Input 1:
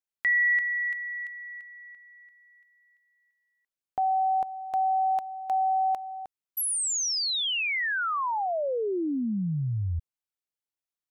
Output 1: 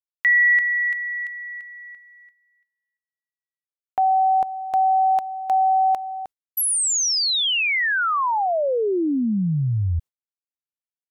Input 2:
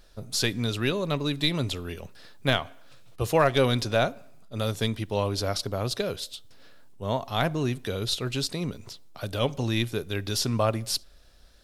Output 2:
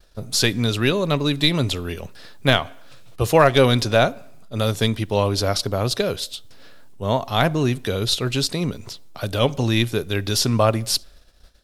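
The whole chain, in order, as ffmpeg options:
-af "agate=range=0.0224:threshold=0.00316:ratio=3:release=130:detection=peak,volume=2.24"

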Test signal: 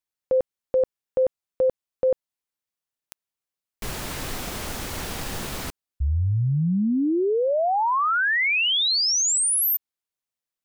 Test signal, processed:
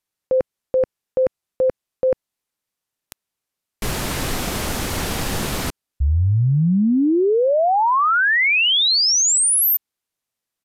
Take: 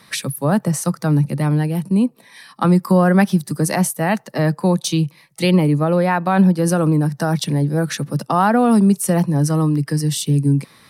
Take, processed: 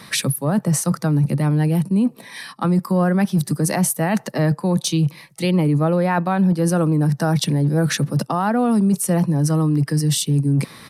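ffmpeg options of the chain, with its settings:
-af "equalizer=f=180:w=0.46:g=2.5,areverse,acompressor=threshold=0.0891:ratio=6:attack=1:release=289:knee=1:detection=peak,areverse,aresample=32000,aresample=44100,volume=2.24"

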